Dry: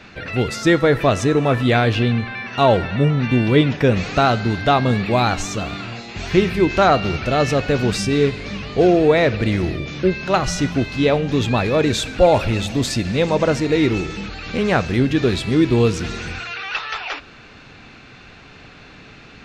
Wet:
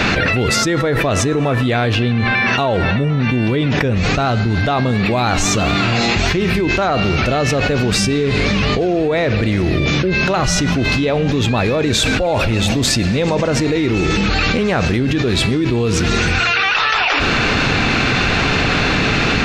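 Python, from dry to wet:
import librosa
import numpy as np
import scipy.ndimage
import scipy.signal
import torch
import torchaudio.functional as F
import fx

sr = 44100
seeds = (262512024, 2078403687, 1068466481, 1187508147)

y = fx.low_shelf(x, sr, hz=120.0, db=9.0, at=(3.85, 4.66))
y = fx.env_flatten(y, sr, amount_pct=100)
y = y * librosa.db_to_amplitude(-7.0)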